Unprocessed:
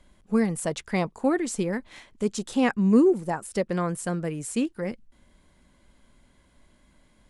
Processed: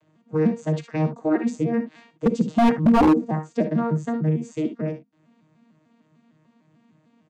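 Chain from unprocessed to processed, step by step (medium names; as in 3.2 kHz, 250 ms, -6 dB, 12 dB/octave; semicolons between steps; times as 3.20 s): vocoder on a broken chord bare fifth, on D#3, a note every 150 ms; 2.30–2.85 s: bass shelf 250 Hz +5 dB; early reflections 37 ms -16.5 dB, 58 ms -10 dB, 73 ms -13 dB; wavefolder -17 dBFS; trim +7 dB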